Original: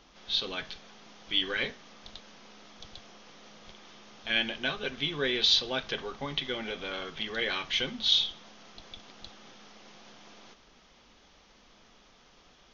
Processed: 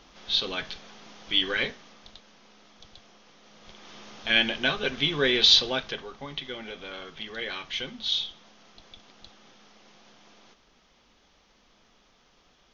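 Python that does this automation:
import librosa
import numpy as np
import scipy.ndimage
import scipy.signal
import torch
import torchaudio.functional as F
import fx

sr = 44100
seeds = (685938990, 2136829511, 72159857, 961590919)

y = fx.gain(x, sr, db=fx.line((1.59, 4.0), (2.22, -3.5), (3.43, -3.5), (3.99, 6.0), (5.63, 6.0), (6.06, -3.0)))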